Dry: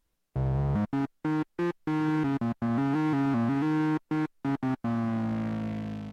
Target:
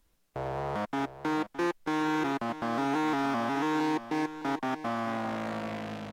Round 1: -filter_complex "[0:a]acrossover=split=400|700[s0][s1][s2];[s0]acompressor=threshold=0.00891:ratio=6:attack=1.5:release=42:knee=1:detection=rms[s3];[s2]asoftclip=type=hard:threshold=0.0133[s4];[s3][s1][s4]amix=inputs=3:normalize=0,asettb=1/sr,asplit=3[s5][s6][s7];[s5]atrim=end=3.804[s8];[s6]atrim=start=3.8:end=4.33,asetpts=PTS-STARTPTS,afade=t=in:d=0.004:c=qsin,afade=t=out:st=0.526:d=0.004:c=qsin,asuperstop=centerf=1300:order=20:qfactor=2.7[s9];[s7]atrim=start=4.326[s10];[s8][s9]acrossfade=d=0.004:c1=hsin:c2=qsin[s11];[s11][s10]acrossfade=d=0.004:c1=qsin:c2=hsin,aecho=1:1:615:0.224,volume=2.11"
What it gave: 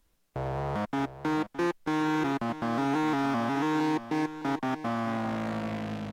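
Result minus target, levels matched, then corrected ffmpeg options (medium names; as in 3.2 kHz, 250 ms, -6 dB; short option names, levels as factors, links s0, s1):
compression: peak gain reduction -6 dB
-filter_complex "[0:a]acrossover=split=400|700[s0][s1][s2];[s0]acompressor=threshold=0.00376:ratio=6:attack=1.5:release=42:knee=1:detection=rms[s3];[s2]asoftclip=type=hard:threshold=0.0133[s4];[s3][s1][s4]amix=inputs=3:normalize=0,asettb=1/sr,asplit=3[s5][s6][s7];[s5]atrim=end=3.804[s8];[s6]atrim=start=3.8:end=4.33,asetpts=PTS-STARTPTS,afade=t=in:d=0.004:c=qsin,afade=t=out:st=0.526:d=0.004:c=qsin,asuperstop=centerf=1300:order=20:qfactor=2.7[s9];[s7]atrim=start=4.326[s10];[s8][s9]acrossfade=d=0.004:c1=hsin:c2=qsin[s11];[s11][s10]acrossfade=d=0.004:c1=qsin:c2=hsin,aecho=1:1:615:0.224,volume=2.11"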